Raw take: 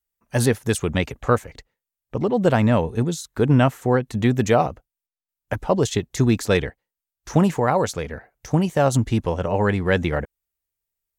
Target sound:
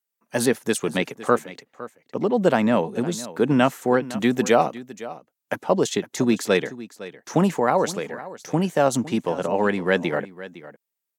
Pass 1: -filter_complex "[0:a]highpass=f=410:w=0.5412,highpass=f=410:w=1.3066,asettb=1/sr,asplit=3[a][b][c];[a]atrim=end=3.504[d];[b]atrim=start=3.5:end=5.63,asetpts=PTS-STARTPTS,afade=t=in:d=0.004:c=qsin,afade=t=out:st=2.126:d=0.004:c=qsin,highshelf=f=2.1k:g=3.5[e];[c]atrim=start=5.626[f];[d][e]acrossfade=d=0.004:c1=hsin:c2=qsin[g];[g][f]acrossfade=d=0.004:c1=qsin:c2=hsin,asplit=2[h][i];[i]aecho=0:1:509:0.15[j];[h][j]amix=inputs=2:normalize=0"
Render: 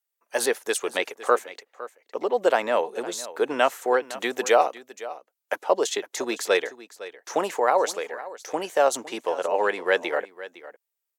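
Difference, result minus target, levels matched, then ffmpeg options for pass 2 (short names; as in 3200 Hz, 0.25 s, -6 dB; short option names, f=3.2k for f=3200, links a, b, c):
250 Hz band -10.5 dB
-filter_complex "[0:a]highpass=f=180:w=0.5412,highpass=f=180:w=1.3066,asettb=1/sr,asplit=3[a][b][c];[a]atrim=end=3.504[d];[b]atrim=start=3.5:end=5.63,asetpts=PTS-STARTPTS,afade=t=in:d=0.004:c=qsin,afade=t=out:st=2.126:d=0.004:c=qsin,highshelf=f=2.1k:g=3.5[e];[c]atrim=start=5.626[f];[d][e]acrossfade=d=0.004:c1=hsin:c2=qsin[g];[g][f]acrossfade=d=0.004:c1=qsin:c2=hsin,asplit=2[h][i];[i]aecho=0:1:509:0.15[j];[h][j]amix=inputs=2:normalize=0"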